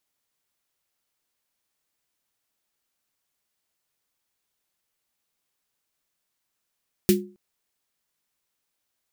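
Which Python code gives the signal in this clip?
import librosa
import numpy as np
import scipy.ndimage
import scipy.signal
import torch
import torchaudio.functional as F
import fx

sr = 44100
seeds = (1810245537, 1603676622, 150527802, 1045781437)

y = fx.drum_snare(sr, seeds[0], length_s=0.27, hz=200.0, second_hz=360.0, noise_db=-6.5, noise_from_hz=1800.0, decay_s=0.36, noise_decay_s=0.16)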